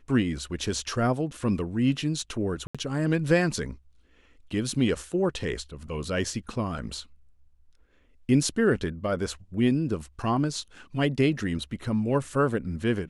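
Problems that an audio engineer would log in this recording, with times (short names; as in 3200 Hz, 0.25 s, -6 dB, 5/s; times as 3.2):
2.67–2.75 gap 76 ms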